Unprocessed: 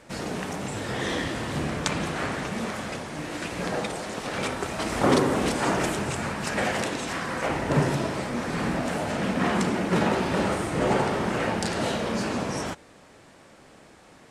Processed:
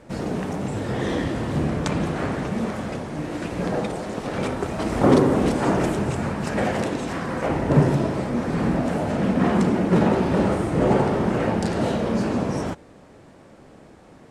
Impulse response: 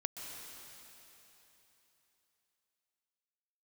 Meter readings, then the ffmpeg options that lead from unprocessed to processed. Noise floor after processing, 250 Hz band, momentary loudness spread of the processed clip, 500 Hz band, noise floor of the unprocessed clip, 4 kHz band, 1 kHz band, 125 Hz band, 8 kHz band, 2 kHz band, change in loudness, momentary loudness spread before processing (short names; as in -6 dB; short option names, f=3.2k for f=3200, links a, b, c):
-48 dBFS, +6.0 dB, 9 LU, +4.5 dB, -52 dBFS, -4.0 dB, +1.5 dB, +6.5 dB, -5.0 dB, -2.0 dB, +4.0 dB, 8 LU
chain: -af "tiltshelf=f=970:g=6,volume=1dB"